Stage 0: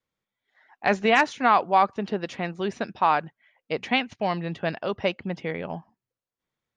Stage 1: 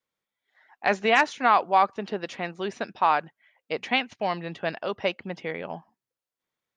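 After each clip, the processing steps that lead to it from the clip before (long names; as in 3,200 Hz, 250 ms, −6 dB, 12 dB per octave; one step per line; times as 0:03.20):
low-shelf EQ 190 Hz −11.5 dB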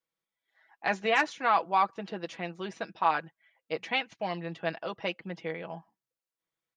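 comb filter 6.1 ms, depth 58%
level −6 dB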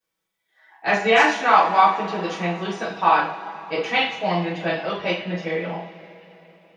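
coupled-rooms reverb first 0.43 s, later 3.8 s, from −21 dB, DRR −10 dB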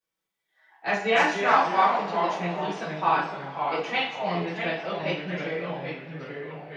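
delay with pitch and tempo change per echo 167 ms, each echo −2 semitones, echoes 2, each echo −6 dB
level −6 dB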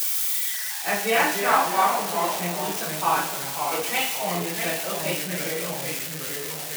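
spike at every zero crossing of −18.5 dBFS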